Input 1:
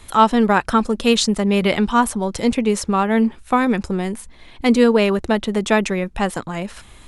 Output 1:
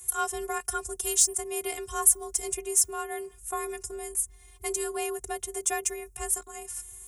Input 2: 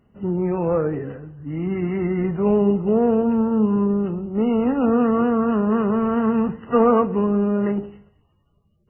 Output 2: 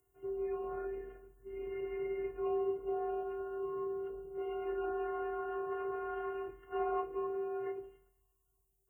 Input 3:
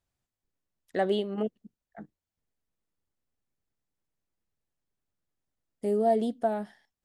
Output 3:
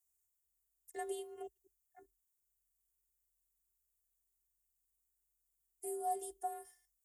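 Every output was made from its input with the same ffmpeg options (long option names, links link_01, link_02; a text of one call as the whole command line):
ffmpeg -i in.wav -af "aexciter=amount=12.5:drive=8:freq=6200,afftfilt=real='hypot(re,im)*cos(PI*b)':imag='0':win_size=512:overlap=0.75,afreqshift=45,volume=-12dB" out.wav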